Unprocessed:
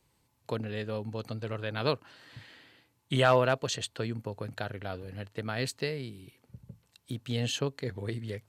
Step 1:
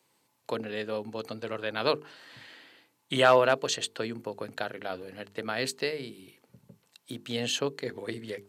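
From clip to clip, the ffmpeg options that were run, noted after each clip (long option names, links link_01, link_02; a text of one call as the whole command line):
ffmpeg -i in.wav -af "highpass=240,bandreject=frequency=50:width_type=h:width=6,bandreject=frequency=100:width_type=h:width=6,bandreject=frequency=150:width_type=h:width=6,bandreject=frequency=200:width_type=h:width=6,bandreject=frequency=250:width_type=h:width=6,bandreject=frequency=300:width_type=h:width=6,bandreject=frequency=350:width_type=h:width=6,bandreject=frequency=400:width_type=h:width=6,bandreject=frequency=450:width_type=h:width=6,volume=3.5dB" out.wav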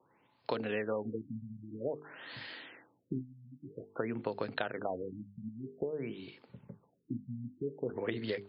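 ffmpeg -i in.wav -af "acompressor=threshold=-34dB:ratio=10,afftfilt=real='re*lt(b*sr/1024,240*pow(5300/240,0.5+0.5*sin(2*PI*0.51*pts/sr)))':imag='im*lt(b*sr/1024,240*pow(5300/240,0.5+0.5*sin(2*PI*0.51*pts/sr)))':win_size=1024:overlap=0.75,volume=4dB" out.wav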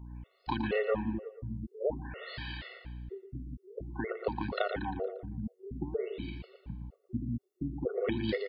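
ffmpeg -i in.wav -af "aeval=exprs='val(0)+0.00316*(sin(2*PI*60*n/s)+sin(2*PI*2*60*n/s)/2+sin(2*PI*3*60*n/s)/3+sin(2*PI*4*60*n/s)/4+sin(2*PI*5*60*n/s)/5)':channel_layout=same,aecho=1:1:116|232|348|464|580:0.355|0.153|0.0656|0.0282|0.0121,afftfilt=real='re*gt(sin(2*PI*2.1*pts/sr)*(1-2*mod(floor(b*sr/1024/370),2)),0)':imag='im*gt(sin(2*PI*2.1*pts/sr)*(1-2*mod(floor(b*sr/1024/370),2)),0)':win_size=1024:overlap=0.75,volume=6dB" out.wav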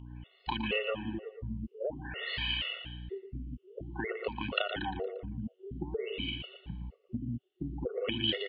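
ffmpeg -i in.wav -af "afftfilt=real='re*pow(10,7/40*sin(2*PI*(0.88*log(max(b,1)*sr/1024/100)/log(2)-(1.1)*(pts-256)/sr)))':imag='im*pow(10,7/40*sin(2*PI*(0.88*log(max(b,1)*sr/1024/100)/log(2)-(1.1)*(pts-256)/sr)))':win_size=1024:overlap=0.75,acompressor=threshold=-32dB:ratio=4,lowpass=frequency=3000:width_type=q:width=8.3" out.wav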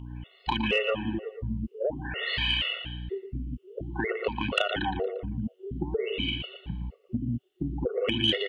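ffmpeg -i in.wav -af "asoftclip=type=tanh:threshold=-17dB,volume=6.5dB" out.wav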